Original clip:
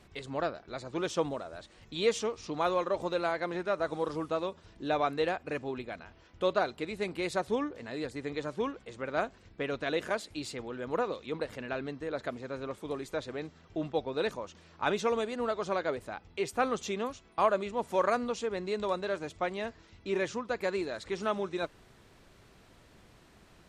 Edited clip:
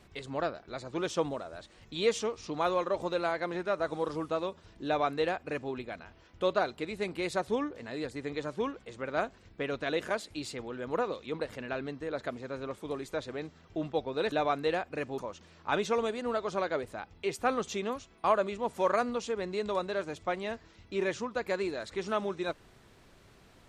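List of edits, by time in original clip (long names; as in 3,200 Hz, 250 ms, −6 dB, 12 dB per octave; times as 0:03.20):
0:04.86–0:05.72: duplicate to 0:14.32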